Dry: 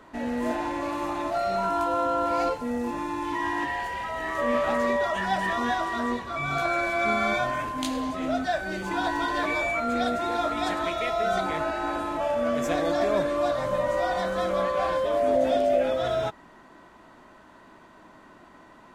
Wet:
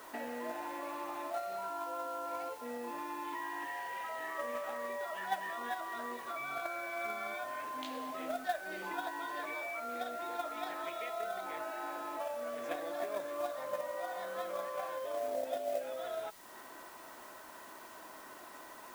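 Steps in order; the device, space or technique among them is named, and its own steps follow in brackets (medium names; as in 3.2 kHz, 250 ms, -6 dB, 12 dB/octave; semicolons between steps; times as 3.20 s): baby monitor (band-pass 410–3600 Hz; compression 6:1, threshold -40 dBFS, peak gain reduction 19 dB; white noise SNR 17 dB; gate -38 dBFS, range -13 dB); trim +14 dB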